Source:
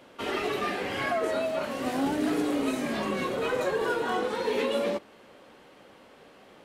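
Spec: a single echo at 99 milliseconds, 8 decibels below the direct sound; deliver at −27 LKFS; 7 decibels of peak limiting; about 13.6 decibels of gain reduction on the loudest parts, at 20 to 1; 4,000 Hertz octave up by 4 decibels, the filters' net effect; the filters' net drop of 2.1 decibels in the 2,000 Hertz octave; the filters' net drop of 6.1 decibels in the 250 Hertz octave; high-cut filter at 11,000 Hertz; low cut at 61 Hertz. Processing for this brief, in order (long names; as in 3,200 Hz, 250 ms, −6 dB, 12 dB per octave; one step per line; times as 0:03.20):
high-pass filter 61 Hz
low-pass filter 11,000 Hz
parametric band 250 Hz −7.5 dB
parametric band 2,000 Hz −4.5 dB
parametric band 4,000 Hz +7 dB
downward compressor 20 to 1, threshold −39 dBFS
brickwall limiter −36.5 dBFS
single-tap delay 99 ms −8 dB
level +18 dB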